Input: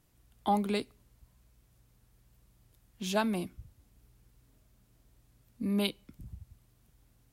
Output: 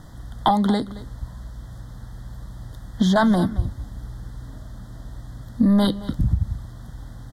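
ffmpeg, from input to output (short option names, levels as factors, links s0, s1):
-filter_complex "[0:a]asettb=1/sr,asplit=3[s0][s1][s2];[s0]atrim=end=0.504[s3];[s1]atrim=start=0.5:end=3.16,asetpts=PTS-STARTPTS,afade=t=in:d=0.004:c=qsin,afade=t=out:st=2.656:d=0.004:c=qsin,acrossover=split=2200|5800[s4][s5][s6];[s4]acompressor=threshold=0.0112:ratio=4[s7];[s5]acompressor=threshold=0.00224:ratio=4[s8];[s6]acompressor=threshold=0.00141:ratio=4[s9];[s7][s8][s9]amix=inputs=3:normalize=0[s10];[s2]atrim=start=3.156[s11];[s3][s10]acrossfade=d=0.004:c1=hsin:c2=qsin[s12];[s12][s11]acrossfade=d=0.004:c1=qsin:c2=hsin,apsyclip=37.6,aemphasis=mode=reproduction:type=75fm,acompressor=threshold=0.316:ratio=6,asuperstop=centerf=2500:order=12:qfactor=2.2,equalizer=f=400:w=2.5:g=-9,aecho=1:1:223:0.15,volume=0.631"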